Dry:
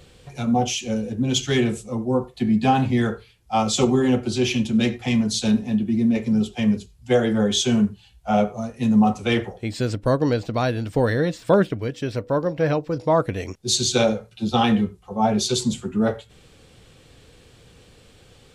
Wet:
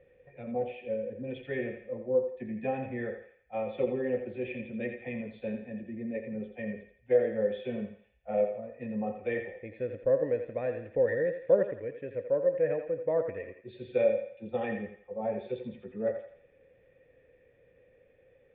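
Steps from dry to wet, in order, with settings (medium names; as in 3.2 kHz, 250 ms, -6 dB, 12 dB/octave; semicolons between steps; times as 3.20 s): cascade formant filter e; thinning echo 84 ms, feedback 45%, high-pass 500 Hz, level -7 dB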